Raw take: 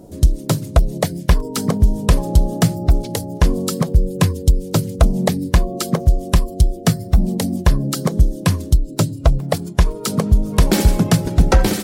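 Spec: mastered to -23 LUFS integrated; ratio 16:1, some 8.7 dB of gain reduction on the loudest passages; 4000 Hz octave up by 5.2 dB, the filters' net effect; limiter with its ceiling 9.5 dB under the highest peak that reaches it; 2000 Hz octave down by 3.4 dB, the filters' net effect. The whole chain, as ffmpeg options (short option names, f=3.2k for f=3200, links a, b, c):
-af "equalizer=f=2k:t=o:g=-6.5,equalizer=f=4k:t=o:g=8,acompressor=threshold=-15dB:ratio=16,volume=2.5dB,alimiter=limit=-9.5dB:level=0:latency=1"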